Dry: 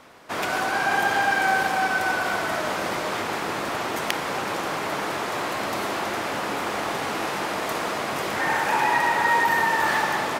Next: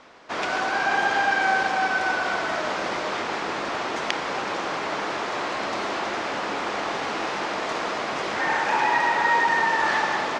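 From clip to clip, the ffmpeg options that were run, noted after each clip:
ffmpeg -i in.wav -af "lowpass=frequency=6500:width=0.5412,lowpass=frequency=6500:width=1.3066,equalizer=frequency=110:width_type=o:width=1.5:gain=-7" out.wav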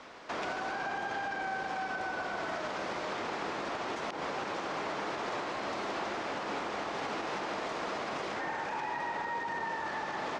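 ffmpeg -i in.wav -filter_complex "[0:a]acrossover=split=180|1000[link_01][link_02][link_03];[link_01]acompressor=threshold=-49dB:ratio=4[link_04];[link_02]acompressor=threshold=-33dB:ratio=4[link_05];[link_03]acompressor=threshold=-37dB:ratio=4[link_06];[link_04][link_05][link_06]amix=inputs=3:normalize=0,alimiter=level_in=3dB:limit=-24dB:level=0:latency=1:release=96,volume=-3dB" out.wav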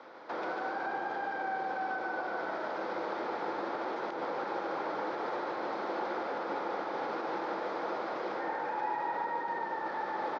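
ffmpeg -i in.wav -af "highpass=140,equalizer=frequency=340:width_type=q:width=4:gain=8,equalizer=frequency=510:width_type=q:width=4:gain=10,equalizer=frequency=850:width_type=q:width=4:gain=8,equalizer=frequency=1400:width_type=q:width=4:gain=6,equalizer=frequency=2800:width_type=q:width=4:gain=-7,lowpass=frequency=4900:width=0.5412,lowpass=frequency=4900:width=1.3066,aecho=1:1:146:0.501,volume=-6dB" out.wav

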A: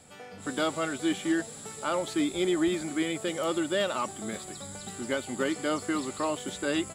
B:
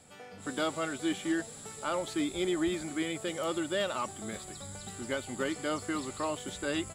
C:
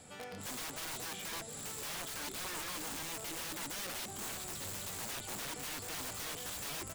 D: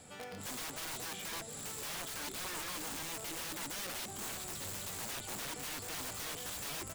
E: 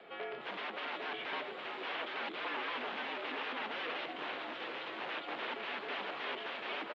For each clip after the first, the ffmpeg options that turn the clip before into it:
ffmpeg -i in.wav -af "asubboost=boost=2.5:cutoff=120,volume=-3dB" out.wav
ffmpeg -i in.wav -af "acompressor=threshold=-36dB:ratio=4,aeval=exprs='(mod(89.1*val(0)+1,2)-1)/89.1':channel_layout=same,volume=2.5dB" out.wav
ffmpeg -i in.wav -af "acrusher=bits=6:mode=log:mix=0:aa=0.000001" out.wav
ffmpeg -i in.wav -af "aecho=1:1:813:0.473,highpass=frequency=370:width_type=q:width=0.5412,highpass=frequency=370:width_type=q:width=1.307,lowpass=frequency=3300:width_type=q:width=0.5176,lowpass=frequency=3300:width_type=q:width=0.7071,lowpass=frequency=3300:width_type=q:width=1.932,afreqshift=-59,volume=5.5dB" out.wav

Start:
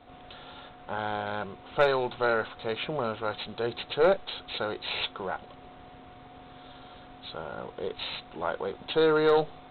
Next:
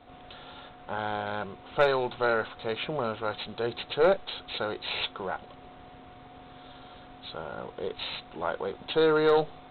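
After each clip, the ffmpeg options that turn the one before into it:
ffmpeg -i in.wav -af anull out.wav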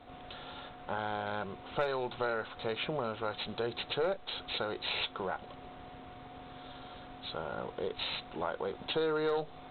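ffmpeg -i in.wav -af "acompressor=threshold=-32dB:ratio=3" out.wav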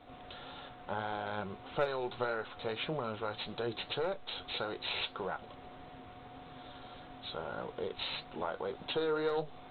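ffmpeg -i in.wav -af "flanger=delay=5.9:depth=5.1:regen=66:speed=1.7:shape=triangular,volume=2.5dB" out.wav

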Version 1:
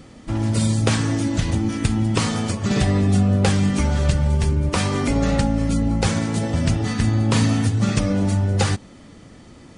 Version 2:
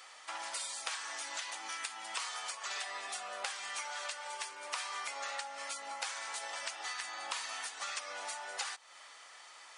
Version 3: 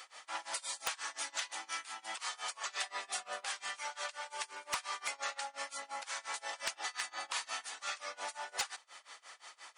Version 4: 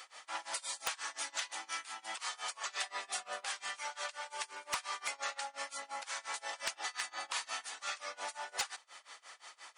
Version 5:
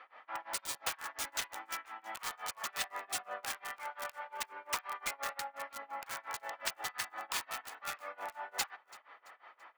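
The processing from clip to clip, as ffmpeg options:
ffmpeg -i in.wav -af "highpass=frequency=860:width=0.5412,highpass=frequency=860:width=1.3066,acompressor=threshold=-39dB:ratio=4" out.wav
ffmpeg -i in.wav -af "tremolo=f=5.7:d=0.95,aeval=exprs='0.0398*(abs(mod(val(0)/0.0398+3,4)-2)-1)':channel_layout=same,volume=4dB" out.wav
ffmpeg -i in.wav -af anull out.wav
ffmpeg -i in.wav -filter_complex "[0:a]acrossover=split=2300[link_01][link_02];[link_02]acrusher=bits=5:mix=0:aa=0.000001[link_03];[link_01][link_03]amix=inputs=2:normalize=0,aecho=1:1:335|670|1005:0.0794|0.0318|0.0127,volume=1dB" out.wav

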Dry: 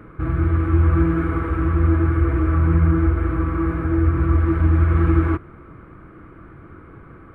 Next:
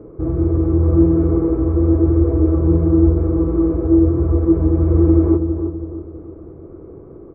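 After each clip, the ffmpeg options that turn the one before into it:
ffmpeg -i in.wav -filter_complex "[0:a]firequalizer=gain_entry='entry(220,0);entry(400,12);entry(1500,-20)':delay=0.05:min_phase=1,asplit=2[link_01][link_02];[link_02]adelay=325,lowpass=frequency=1200:poles=1,volume=-7dB,asplit=2[link_03][link_04];[link_04]adelay=325,lowpass=frequency=1200:poles=1,volume=0.43,asplit=2[link_05][link_06];[link_06]adelay=325,lowpass=frequency=1200:poles=1,volume=0.43,asplit=2[link_07][link_08];[link_08]adelay=325,lowpass=frequency=1200:poles=1,volume=0.43,asplit=2[link_09][link_10];[link_10]adelay=325,lowpass=frequency=1200:poles=1,volume=0.43[link_11];[link_01][link_03][link_05][link_07][link_09][link_11]amix=inputs=6:normalize=0" out.wav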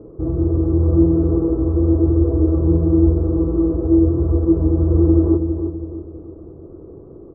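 ffmpeg -i in.wav -af "lowpass=1000,volume=-1dB" out.wav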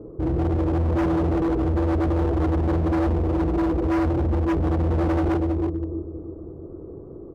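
ffmpeg -i in.wav -af "asoftclip=type=hard:threshold=-19.5dB" out.wav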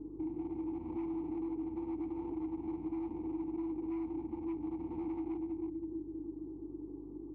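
ffmpeg -i in.wav -filter_complex "[0:a]asplit=3[link_01][link_02][link_03];[link_01]bandpass=frequency=300:width_type=q:width=8,volume=0dB[link_04];[link_02]bandpass=frequency=870:width_type=q:width=8,volume=-6dB[link_05];[link_03]bandpass=frequency=2240:width_type=q:width=8,volume=-9dB[link_06];[link_04][link_05][link_06]amix=inputs=3:normalize=0,acompressor=threshold=-41dB:ratio=3,aeval=exprs='val(0)+0.00141*(sin(2*PI*50*n/s)+sin(2*PI*2*50*n/s)/2+sin(2*PI*3*50*n/s)/3+sin(2*PI*4*50*n/s)/4+sin(2*PI*5*50*n/s)/5)':channel_layout=same,volume=1.5dB" out.wav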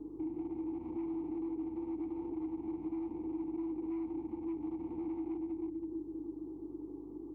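ffmpeg -i in.wav -filter_complex "[0:a]lowshelf=frequency=270:gain=-9.5,acrossover=split=530[link_01][link_02];[link_02]alimiter=level_in=30.5dB:limit=-24dB:level=0:latency=1:release=199,volume=-30.5dB[link_03];[link_01][link_03]amix=inputs=2:normalize=0,volume=4.5dB" out.wav

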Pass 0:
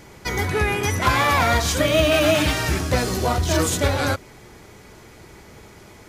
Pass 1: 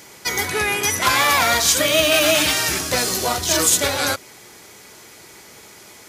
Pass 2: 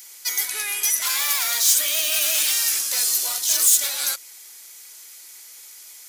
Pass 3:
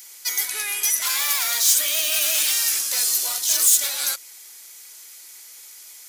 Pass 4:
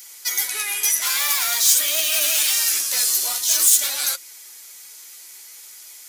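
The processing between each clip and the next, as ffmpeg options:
ffmpeg -i in.wav -af "highpass=frequency=310:poles=1,highshelf=frequency=3100:gain=11.5" out.wav
ffmpeg -i in.wav -af "aeval=exprs='0.841*sin(PI/2*2.51*val(0)/0.841)':channel_layout=same,aderivative,volume=-9dB" out.wav
ffmpeg -i in.wav -af anull out.wav
ffmpeg -i in.wav -af "flanger=delay=5.5:depth=8.1:regen=41:speed=0.48:shape=triangular,volume=5.5dB" out.wav

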